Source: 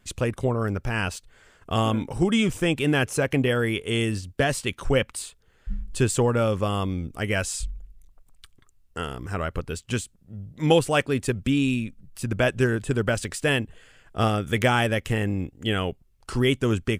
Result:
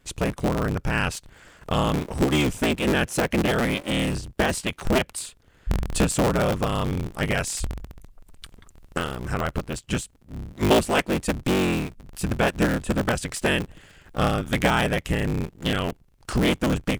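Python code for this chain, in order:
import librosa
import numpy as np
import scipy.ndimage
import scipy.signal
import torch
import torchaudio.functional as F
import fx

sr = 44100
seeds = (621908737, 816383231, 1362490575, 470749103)

y = fx.cycle_switch(x, sr, every=3, mode='inverted')
y = fx.recorder_agc(y, sr, target_db=-13.0, rise_db_per_s=6.5, max_gain_db=30)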